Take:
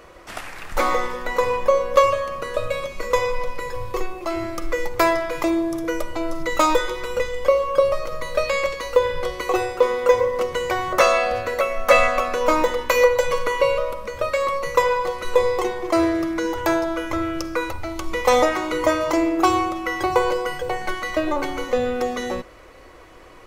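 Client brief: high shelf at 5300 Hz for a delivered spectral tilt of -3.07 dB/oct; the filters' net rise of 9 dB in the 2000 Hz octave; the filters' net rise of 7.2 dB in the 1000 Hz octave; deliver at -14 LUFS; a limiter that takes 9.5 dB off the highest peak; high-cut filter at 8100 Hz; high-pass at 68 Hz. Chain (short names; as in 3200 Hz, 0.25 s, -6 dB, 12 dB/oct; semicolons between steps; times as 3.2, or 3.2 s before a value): HPF 68 Hz; LPF 8100 Hz; bell 1000 Hz +6 dB; bell 2000 Hz +8 dB; high shelf 5300 Hz +8 dB; gain +4 dB; limiter -2 dBFS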